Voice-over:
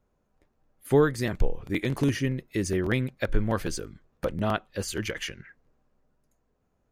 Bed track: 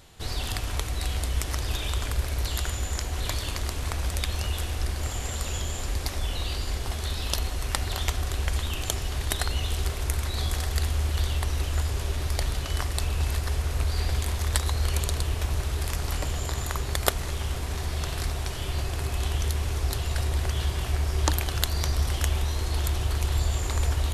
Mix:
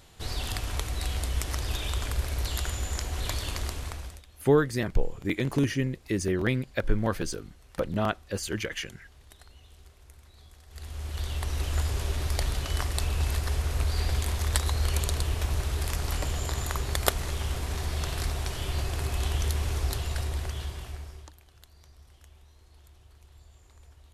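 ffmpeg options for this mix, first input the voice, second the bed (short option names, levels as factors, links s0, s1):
-filter_complex "[0:a]adelay=3550,volume=0.944[s0];[1:a]volume=13.3,afade=t=out:st=3.63:d=0.6:silence=0.0668344,afade=t=in:st=10.67:d=1.11:silence=0.0595662,afade=t=out:st=19.75:d=1.56:silence=0.0398107[s1];[s0][s1]amix=inputs=2:normalize=0"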